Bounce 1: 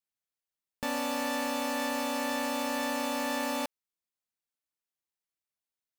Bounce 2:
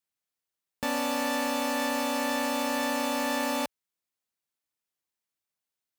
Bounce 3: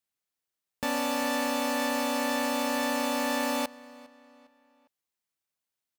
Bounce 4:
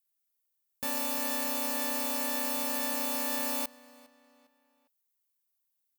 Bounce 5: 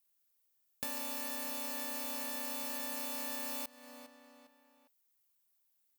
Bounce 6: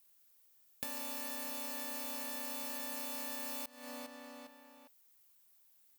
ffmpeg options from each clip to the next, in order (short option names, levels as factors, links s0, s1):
-af "highpass=46,volume=1.41"
-filter_complex "[0:a]asplit=2[s0][s1];[s1]adelay=405,lowpass=f=4800:p=1,volume=0.0891,asplit=2[s2][s3];[s3]adelay=405,lowpass=f=4800:p=1,volume=0.43,asplit=2[s4][s5];[s5]adelay=405,lowpass=f=4800:p=1,volume=0.43[s6];[s0][s2][s4][s6]amix=inputs=4:normalize=0"
-af "aemphasis=mode=production:type=50fm,volume=0.422"
-filter_complex "[0:a]acrossover=split=1600|5300[s0][s1][s2];[s0]acompressor=threshold=0.00316:ratio=4[s3];[s1]acompressor=threshold=0.00224:ratio=4[s4];[s2]acompressor=threshold=0.00794:ratio=4[s5];[s3][s4][s5]amix=inputs=3:normalize=0,volume=1.5"
-af "acompressor=threshold=0.00251:ratio=2.5,volume=2.82"